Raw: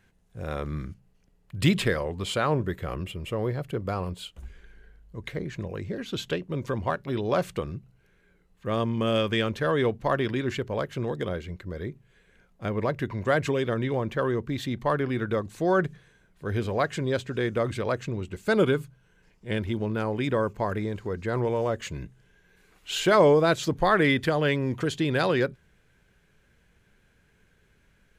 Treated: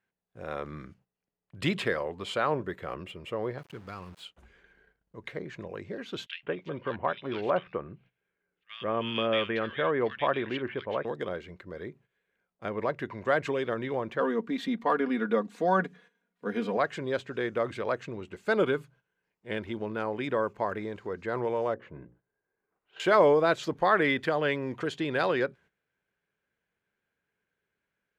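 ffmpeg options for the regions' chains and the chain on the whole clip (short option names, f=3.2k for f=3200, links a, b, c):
-filter_complex "[0:a]asettb=1/sr,asplit=3[a][b][c];[a]atrim=end=3.584[d];[b]atrim=start=3.58:end=4.25,asetpts=PTS-STARTPTS,afade=t=in:d=0.004:c=qsin,afade=t=out:st=0.666:d=0.004:c=qsin,equalizer=f=600:t=o:w=1.9:g=-14.5,aeval=exprs='val(0)*gte(abs(val(0)),0.00562)':c=same[e];[c]atrim=start=4.246[f];[d][e]acrossfade=d=0.004:c1=hsin:c2=qsin[g];[g][f]acrossfade=d=0.004:c1=qsin:c2=hsin,asettb=1/sr,asplit=3[h][i][j];[h]atrim=end=6.264[k];[i]atrim=start=6.26:end=11.05,asetpts=PTS-STARTPTS,afade=t=in:d=0.004:c=qsin,afade=t=out:st=4.786:d=0.004:c=qsin,lowpass=f=3k:t=q:w=1.9,acrossover=split=2000[l][m];[l]adelay=170[n];[n][m]amix=inputs=2:normalize=0,atrim=end_sample=211239[o];[j]atrim=start=11.046[p];[k][o]acrossfade=d=0.004:c1=hsin:c2=qsin[q];[q][p]acrossfade=d=0.004:c1=qsin:c2=hsin,asettb=1/sr,asplit=3[r][s][t];[r]atrim=end=14.204[u];[s]atrim=start=14.2:end=16.77,asetpts=PTS-STARTPTS,afade=t=in:d=0.004:c=qsin,afade=t=out:st=2.566:d=0.004:c=qsin,lowshelf=f=150:t=q:w=3:g=-8.5,aecho=1:1:4.2:0.67,atrim=end_sample=113337[v];[t]atrim=start=16.766[w];[u][v]acrossfade=d=0.004:c1=hsin:c2=qsin[x];[x][w]acrossfade=d=0.004:c1=qsin:c2=hsin,asettb=1/sr,asplit=3[y][z][aa];[y]atrim=end=21.744[ab];[z]atrim=start=21.74:end=23,asetpts=PTS-STARTPTS,afade=t=in:d=0.004:c=qsin,afade=t=out:st=1.256:d=0.004:c=qsin,lowpass=1.1k,bandreject=f=60:t=h:w=6,bandreject=f=120:t=h:w=6,bandreject=f=180:t=h:w=6,bandreject=f=240:t=h:w=6,bandreject=f=300:t=h:w=6,bandreject=f=360:t=h:w=6,bandreject=f=420:t=h:w=6,bandreject=f=480:t=h:w=6,bandreject=f=540:t=h:w=6[ac];[aa]atrim=start=22.996[ad];[ab][ac]acrossfade=d=0.004:c1=hsin:c2=qsin[ae];[ae][ad]acrossfade=d=0.004:c1=qsin:c2=hsin,lowpass=f=2k:p=1,agate=range=-14dB:threshold=-50dB:ratio=16:detection=peak,highpass=f=520:p=1,volume=1dB"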